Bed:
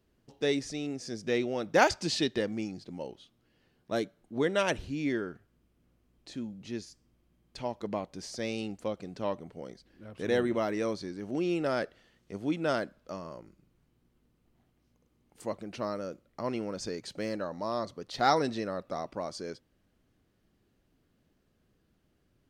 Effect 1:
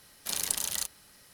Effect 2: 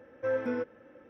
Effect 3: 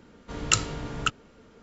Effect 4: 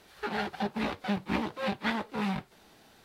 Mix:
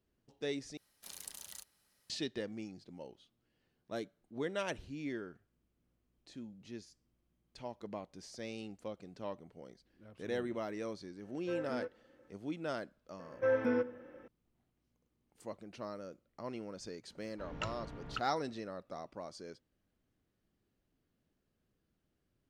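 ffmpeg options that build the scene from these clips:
-filter_complex "[2:a]asplit=2[a][b];[0:a]volume=-9.5dB[c];[b]asplit=2[d][e];[e]adelay=81,lowpass=f=1.8k:p=1,volume=-17dB,asplit=2[f][g];[g]adelay=81,lowpass=f=1.8k:p=1,volume=0.47,asplit=2[h][i];[i]adelay=81,lowpass=f=1.8k:p=1,volume=0.47,asplit=2[j][k];[k]adelay=81,lowpass=f=1.8k:p=1,volume=0.47[l];[d][f][h][j][l]amix=inputs=5:normalize=0[m];[3:a]lowpass=2.4k[n];[c]asplit=2[o][p];[o]atrim=end=0.774[q];[1:a]atrim=end=1.33,asetpts=PTS-STARTPTS,volume=-17.5dB[r];[p]atrim=start=2.096[s];[a]atrim=end=1.09,asetpts=PTS-STARTPTS,volume=-10dB,afade=t=in:d=0.004:c=hsin,afade=t=out:st=1.086:d=0.004:c=hsin,adelay=11240[t];[m]atrim=end=1.09,asetpts=PTS-STARTPTS,afade=t=in:d=0.004:c=hsin,afade=t=out:st=1.086:d=0.004:c=hsin,adelay=13190[u];[n]atrim=end=1.62,asetpts=PTS-STARTPTS,volume=-13dB,afade=t=in:d=0.004:c=hsin,afade=t=out:st=1.616:d=0.004:c=hsin,adelay=17100[v];[q][r]acrossfade=d=0.004:c1=hsin:c2=hsin[w];[w][s]acrossfade=d=0.004:c1=hsin:c2=hsin[x];[x][t][u][v]amix=inputs=4:normalize=0"

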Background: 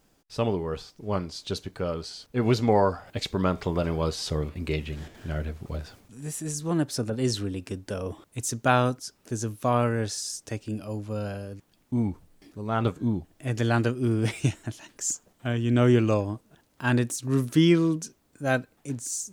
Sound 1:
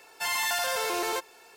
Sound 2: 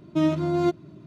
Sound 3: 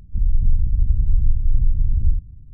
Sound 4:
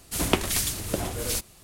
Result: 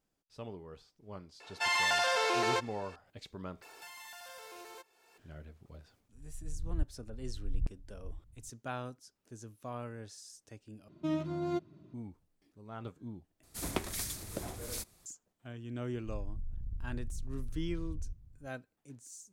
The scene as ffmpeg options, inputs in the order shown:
-filter_complex "[1:a]asplit=2[a][b];[3:a]asplit=2[c][d];[0:a]volume=-18.5dB[e];[a]highpass=260,lowpass=5.4k[f];[b]acompressor=threshold=-42dB:ratio=12:attack=0.11:release=949:knee=1:detection=peak[g];[c]aeval=exprs='val(0)*pow(10,-29*if(lt(mod(-1.2*n/s,1),2*abs(-1.2)/1000),1-mod(-1.2*n/s,1)/(2*abs(-1.2)/1000),(mod(-1.2*n/s,1)-2*abs(-1.2)/1000)/(1-2*abs(-1.2)/1000))/20)':c=same[h];[4:a]equalizer=f=2.9k:t=o:w=0.3:g=-6.5[i];[d]acompressor=threshold=-18dB:ratio=6:attack=3.2:release=140:knee=1:detection=peak[j];[e]asplit=4[k][l][m][n];[k]atrim=end=3.624[o];[g]atrim=end=1.56,asetpts=PTS-STARTPTS,volume=-0.5dB[p];[l]atrim=start=5.176:end=10.884[q];[2:a]atrim=end=1.06,asetpts=PTS-STARTPTS,volume=-11.5dB[r];[m]atrim=start=11.936:end=13.434[s];[i]atrim=end=1.63,asetpts=PTS-STARTPTS,volume=-11.5dB[t];[n]atrim=start=15.056[u];[f]atrim=end=1.56,asetpts=PTS-STARTPTS,afade=t=in:d=0.004:c=hsin,afade=t=out:st=1.556:d=0.004:c=hsin,adelay=1400[v];[h]atrim=end=2.53,asetpts=PTS-STARTPTS,volume=-13dB,afade=t=in:d=0.004:c=hsin,afade=t=out:st=2.526:d=0.004:c=hsin,adelay=6000[w];[j]atrim=end=2.53,asetpts=PTS-STARTPTS,volume=-16.5dB,afade=t=in:d=0.004:c=hsin,afade=t=out:st=2.526:d=0.004:c=hsin,adelay=15940[x];[o][p]acrossfade=d=0.004:c1=hsin:c2=hsin[y];[y][q]acrossfade=d=0.004:c1=hsin:c2=hsin[z];[z][r]acrossfade=d=0.004:c1=hsin:c2=hsin[aa];[aa][s]acrossfade=d=0.004:c1=hsin:c2=hsin[ab];[ab][t]acrossfade=d=0.004:c1=hsin:c2=hsin[ac];[ac][u]acrossfade=d=0.004:c1=hsin:c2=hsin[ad];[ad][v][w][x]amix=inputs=4:normalize=0"

